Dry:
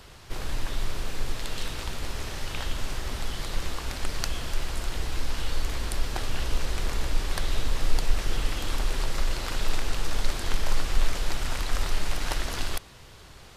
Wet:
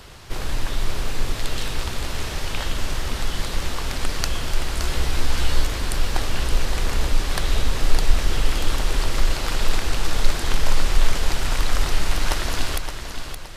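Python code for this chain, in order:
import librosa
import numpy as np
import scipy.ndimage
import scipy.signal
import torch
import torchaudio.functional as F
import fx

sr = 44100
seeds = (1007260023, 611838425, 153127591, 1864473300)

y = fx.doubler(x, sr, ms=14.0, db=-2, at=(4.79, 5.67))
y = fx.echo_feedback(y, sr, ms=569, feedback_pct=37, wet_db=-8.0)
y = F.gain(torch.from_numpy(y), 5.5).numpy()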